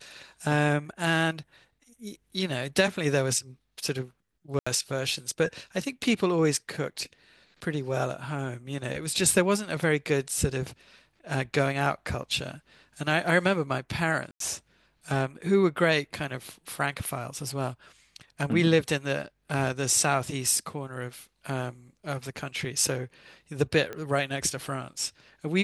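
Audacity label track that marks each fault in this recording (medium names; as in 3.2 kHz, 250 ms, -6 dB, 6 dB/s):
4.590000	4.670000	dropout 75 ms
14.310000	14.400000	dropout 93 ms
23.930000	23.930000	pop -22 dBFS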